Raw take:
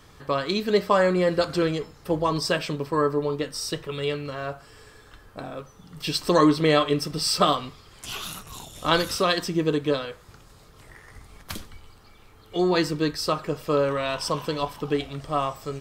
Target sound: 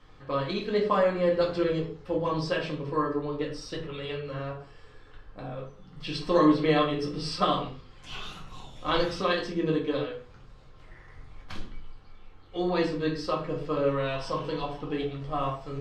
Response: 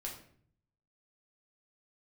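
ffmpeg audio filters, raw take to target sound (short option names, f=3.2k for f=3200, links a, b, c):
-filter_complex "[0:a]lowpass=3.9k[a];[1:a]atrim=start_sample=2205,afade=t=out:st=0.39:d=0.01,atrim=end_sample=17640,asetrate=61740,aresample=44100[b];[a][b]afir=irnorm=-1:irlink=0"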